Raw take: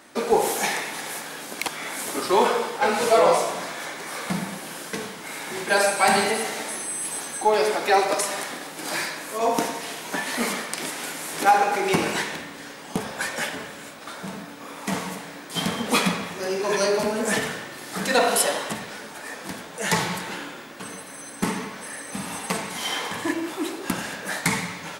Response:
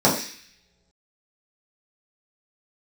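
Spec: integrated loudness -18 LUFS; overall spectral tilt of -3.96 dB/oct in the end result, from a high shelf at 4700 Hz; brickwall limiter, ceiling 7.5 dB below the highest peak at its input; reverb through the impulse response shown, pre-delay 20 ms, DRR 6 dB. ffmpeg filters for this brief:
-filter_complex "[0:a]highshelf=f=4.7k:g=-5.5,alimiter=limit=-14dB:level=0:latency=1,asplit=2[a][b];[1:a]atrim=start_sample=2205,adelay=20[c];[b][c]afir=irnorm=-1:irlink=0,volume=-26dB[d];[a][d]amix=inputs=2:normalize=0,volume=8dB"

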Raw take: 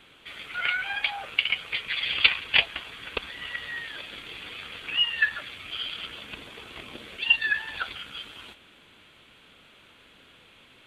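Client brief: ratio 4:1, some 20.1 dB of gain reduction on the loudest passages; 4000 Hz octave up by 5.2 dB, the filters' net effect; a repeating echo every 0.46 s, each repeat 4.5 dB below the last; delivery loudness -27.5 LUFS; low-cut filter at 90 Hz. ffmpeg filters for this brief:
-af "highpass=90,equalizer=f=4k:t=o:g=8,acompressor=threshold=-36dB:ratio=4,aecho=1:1:460|920|1380|1840|2300|2760|3220|3680|4140:0.596|0.357|0.214|0.129|0.0772|0.0463|0.0278|0.0167|0.01,volume=7.5dB"

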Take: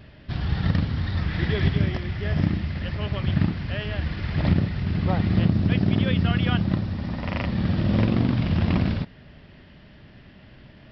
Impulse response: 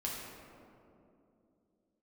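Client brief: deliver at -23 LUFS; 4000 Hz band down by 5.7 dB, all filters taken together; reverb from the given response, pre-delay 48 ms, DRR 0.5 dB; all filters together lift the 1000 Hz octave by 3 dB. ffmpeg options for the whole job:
-filter_complex "[0:a]equalizer=f=1k:t=o:g=4.5,equalizer=f=4k:t=o:g=-8.5,asplit=2[a][b];[1:a]atrim=start_sample=2205,adelay=48[c];[b][c]afir=irnorm=-1:irlink=0,volume=-3dB[d];[a][d]amix=inputs=2:normalize=0,volume=-2.5dB"

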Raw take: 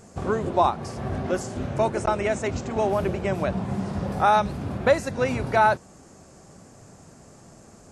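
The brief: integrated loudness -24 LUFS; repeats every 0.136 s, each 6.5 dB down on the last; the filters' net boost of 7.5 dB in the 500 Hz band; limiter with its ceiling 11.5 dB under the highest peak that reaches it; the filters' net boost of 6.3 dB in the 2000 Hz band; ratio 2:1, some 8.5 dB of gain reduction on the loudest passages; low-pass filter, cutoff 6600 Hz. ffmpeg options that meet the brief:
-af "lowpass=6.6k,equalizer=f=500:t=o:g=9,equalizer=f=2k:t=o:g=8,acompressor=threshold=-21dB:ratio=2,alimiter=limit=-18dB:level=0:latency=1,aecho=1:1:136|272|408|544|680|816:0.473|0.222|0.105|0.0491|0.0231|0.0109,volume=3dB"

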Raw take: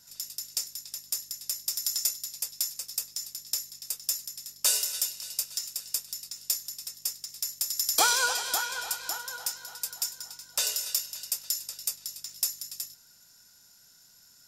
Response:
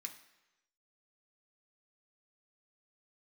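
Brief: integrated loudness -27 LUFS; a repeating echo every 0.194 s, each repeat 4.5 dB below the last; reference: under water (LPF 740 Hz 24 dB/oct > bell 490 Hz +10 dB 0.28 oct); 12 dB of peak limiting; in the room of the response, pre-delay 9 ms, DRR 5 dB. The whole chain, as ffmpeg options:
-filter_complex "[0:a]alimiter=limit=-20dB:level=0:latency=1,aecho=1:1:194|388|582|776|970|1164|1358|1552|1746:0.596|0.357|0.214|0.129|0.0772|0.0463|0.0278|0.0167|0.01,asplit=2[a][b];[1:a]atrim=start_sample=2205,adelay=9[c];[b][c]afir=irnorm=-1:irlink=0,volume=-1dB[d];[a][d]amix=inputs=2:normalize=0,lowpass=f=740:w=0.5412,lowpass=f=740:w=1.3066,equalizer=f=490:t=o:w=0.28:g=10,volume=17.5dB"

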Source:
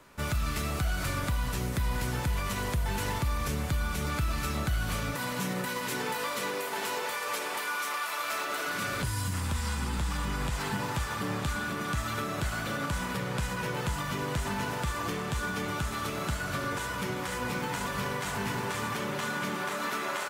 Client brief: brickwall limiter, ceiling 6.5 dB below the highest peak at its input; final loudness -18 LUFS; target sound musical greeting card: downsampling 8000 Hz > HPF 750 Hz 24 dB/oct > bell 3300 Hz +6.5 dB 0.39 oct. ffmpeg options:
-af "alimiter=level_in=2.5dB:limit=-24dB:level=0:latency=1,volume=-2.5dB,aresample=8000,aresample=44100,highpass=f=750:w=0.5412,highpass=f=750:w=1.3066,equalizer=f=3.3k:t=o:w=0.39:g=6.5,volume=19.5dB"

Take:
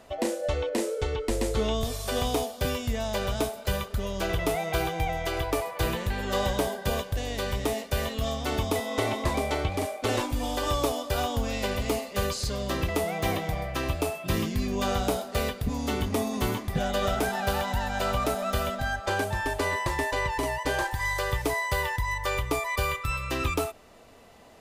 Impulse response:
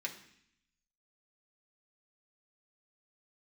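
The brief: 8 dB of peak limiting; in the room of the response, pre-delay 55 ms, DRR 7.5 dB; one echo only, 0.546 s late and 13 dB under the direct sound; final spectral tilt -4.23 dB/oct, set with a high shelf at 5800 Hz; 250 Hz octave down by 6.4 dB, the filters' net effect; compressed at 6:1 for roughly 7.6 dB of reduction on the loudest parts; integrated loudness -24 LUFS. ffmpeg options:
-filter_complex "[0:a]equalizer=f=250:t=o:g=-8.5,highshelf=f=5.8k:g=-4.5,acompressor=threshold=-32dB:ratio=6,alimiter=level_in=3.5dB:limit=-24dB:level=0:latency=1,volume=-3.5dB,aecho=1:1:546:0.224,asplit=2[a][b];[1:a]atrim=start_sample=2205,adelay=55[c];[b][c]afir=irnorm=-1:irlink=0,volume=-8.5dB[d];[a][d]amix=inputs=2:normalize=0,volume=13dB"

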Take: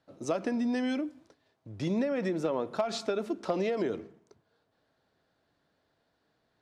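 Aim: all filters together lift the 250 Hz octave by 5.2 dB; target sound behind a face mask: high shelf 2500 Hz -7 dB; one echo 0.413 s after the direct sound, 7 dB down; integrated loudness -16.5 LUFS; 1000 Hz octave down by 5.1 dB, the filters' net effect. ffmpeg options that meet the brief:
-af "equalizer=f=250:t=o:g=6.5,equalizer=f=1k:t=o:g=-7.5,highshelf=f=2.5k:g=-7,aecho=1:1:413:0.447,volume=12.5dB"

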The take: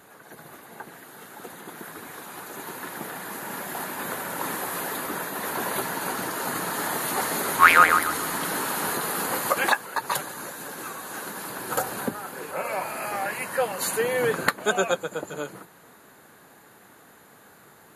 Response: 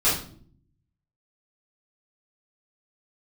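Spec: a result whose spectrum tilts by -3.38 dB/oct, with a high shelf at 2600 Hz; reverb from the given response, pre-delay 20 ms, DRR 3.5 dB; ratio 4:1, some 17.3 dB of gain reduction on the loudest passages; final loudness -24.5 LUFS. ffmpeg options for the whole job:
-filter_complex "[0:a]highshelf=f=2.6k:g=-4,acompressor=threshold=-32dB:ratio=4,asplit=2[a][b];[1:a]atrim=start_sample=2205,adelay=20[c];[b][c]afir=irnorm=-1:irlink=0,volume=-18dB[d];[a][d]amix=inputs=2:normalize=0,volume=9dB"

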